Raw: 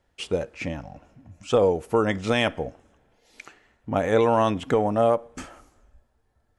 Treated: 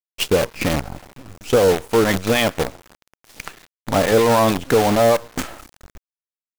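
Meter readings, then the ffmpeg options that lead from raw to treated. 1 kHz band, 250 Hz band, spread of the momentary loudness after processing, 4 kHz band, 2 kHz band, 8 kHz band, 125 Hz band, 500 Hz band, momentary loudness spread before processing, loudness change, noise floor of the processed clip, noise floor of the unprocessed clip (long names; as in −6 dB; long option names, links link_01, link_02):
+5.0 dB, +6.0 dB, 20 LU, +9.5 dB, +7.5 dB, +16.0 dB, +6.0 dB, +5.5 dB, 14 LU, +5.5 dB, below −85 dBFS, −69 dBFS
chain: -filter_complex "[0:a]acrossover=split=690[link_01][link_02];[link_01]aeval=exprs='val(0)*(1-0.5/2+0.5/2*cos(2*PI*6.5*n/s))':channel_layout=same[link_03];[link_02]aeval=exprs='val(0)*(1-0.5/2-0.5/2*cos(2*PI*6.5*n/s))':channel_layout=same[link_04];[link_03][link_04]amix=inputs=2:normalize=0,dynaudnorm=framelen=110:gausssize=3:maxgain=15dB,acrusher=bits=4:dc=4:mix=0:aa=0.000001,acontrast=80,volume=-6.5dB"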